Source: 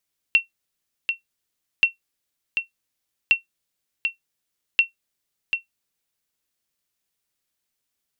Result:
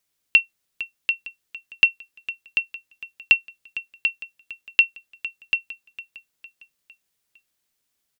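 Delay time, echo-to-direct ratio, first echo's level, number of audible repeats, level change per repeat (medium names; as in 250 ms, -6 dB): 456 ms, -14.5 dB, -15.5 dB, 4, -6.5 dB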